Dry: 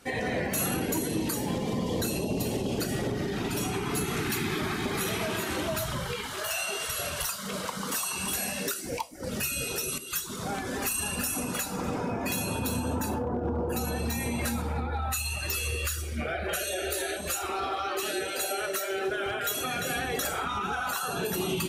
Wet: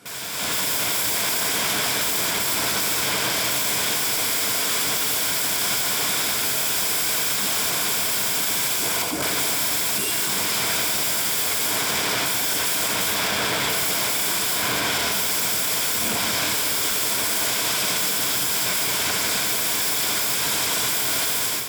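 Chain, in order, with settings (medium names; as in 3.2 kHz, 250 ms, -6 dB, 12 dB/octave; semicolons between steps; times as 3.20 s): tracing distortion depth 0.043 ms; integer overflow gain 34.5 dB; high-pass 86 Hz 24 dB/octave; two-band feedback delay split 960 Hz, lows 195 ms, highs 85 ms, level -6 dB; level rider gain up to 13.5 dB; hard clipper -19 dBFS, distortion -23 dB; rippled EQ curve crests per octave 1.7, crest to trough 6 dB; peak limiter -19.5 dBFS, peak gain reduction 5 dB; trim +4.5 dB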